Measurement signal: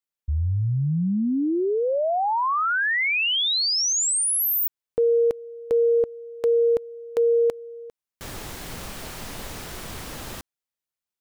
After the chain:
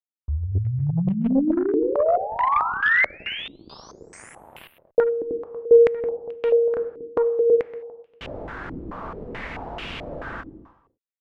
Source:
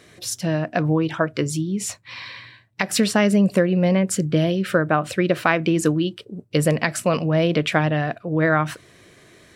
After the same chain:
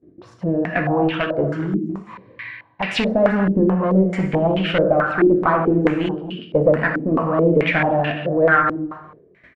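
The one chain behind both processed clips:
noise gate with hold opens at −39 dBFS, closes at −44 dBFS, hold 12 ms, range −16 dB
reverb whose tail is shaped and stops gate 340 ms falling, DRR 4 dB
asymmetric clip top −17.5 dBFS
on a send: single-tap delay 237 ms −12.5 dB
on the sum: low-pass on a step sequencer 4.6 Hz 320–2,800 Hz
level −1 dB

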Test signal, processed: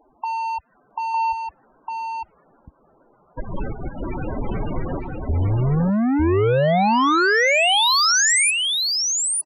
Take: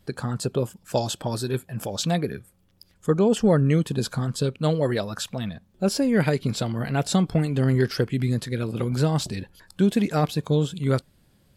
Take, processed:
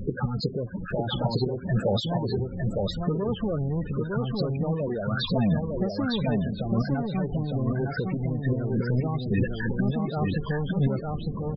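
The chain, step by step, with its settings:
gate with flip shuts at −17 dBFS, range −25 dB
parametric band 78 Hz −4 dB 1.4 octaves
power curve on the samples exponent 0.35
low-pass that shuts in the quiet parts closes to 1,000 Hz, open at −17.5 dBFS
spectral peaks only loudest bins 16
single-tap delay 906 ms −3 dB

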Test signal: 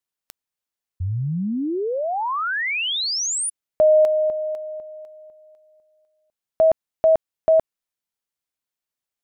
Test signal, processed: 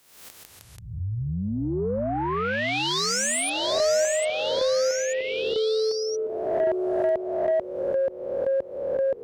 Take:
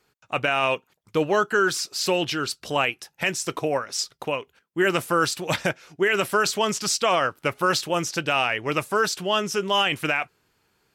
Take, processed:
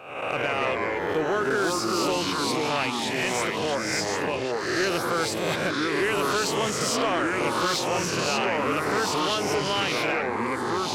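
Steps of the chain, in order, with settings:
peak hold with a rise ahead of every peak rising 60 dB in 0.84 s
delay with pitch and tempo change per echo 93 ms, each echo −3 semitones, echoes 3
in parallel at +1 dB: downward compressor, threshold −27 dBFS
on the sum: high-pass filter 50 Hz
parametric band 430 Hz +2.5 dB 0.77 octaves
soft clipping −7.5 dBFS
level −8.5 dB

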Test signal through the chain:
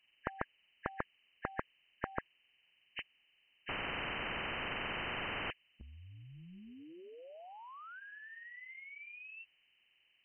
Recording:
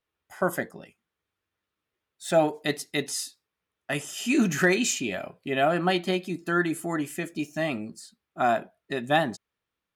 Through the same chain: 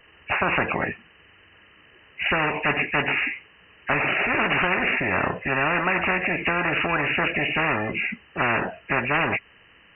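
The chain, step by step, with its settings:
hearing-aid frequency compression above 1,600 Hz 4 to 1
every bin compressed towards the loudest bin 10 to 1

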